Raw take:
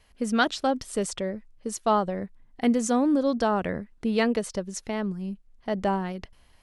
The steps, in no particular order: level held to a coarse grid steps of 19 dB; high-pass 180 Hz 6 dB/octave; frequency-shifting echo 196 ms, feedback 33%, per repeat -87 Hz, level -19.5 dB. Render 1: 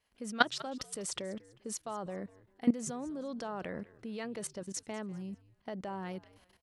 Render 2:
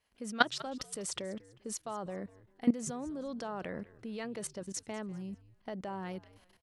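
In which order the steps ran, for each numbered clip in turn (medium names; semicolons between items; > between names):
level held to a coarse grid > frequency-shifting echo > high-pass; level held to a coarse grid > high-pass > frequency-shifting echo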